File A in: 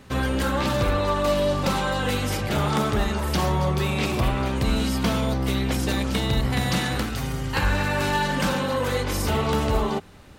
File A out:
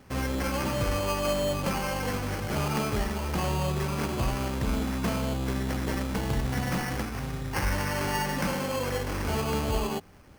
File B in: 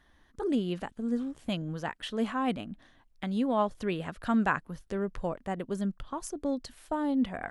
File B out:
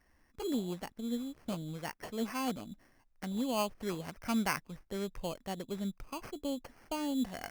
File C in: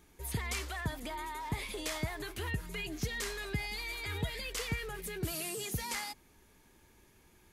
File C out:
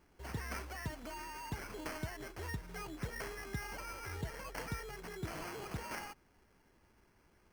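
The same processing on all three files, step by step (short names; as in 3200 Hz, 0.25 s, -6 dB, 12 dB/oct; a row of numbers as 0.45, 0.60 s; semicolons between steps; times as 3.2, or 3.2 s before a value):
sample-rate reducer 3700 Hz, jitter 0%; gain -5.5 dB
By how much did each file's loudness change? -5.5, -5.5, -6.0 LU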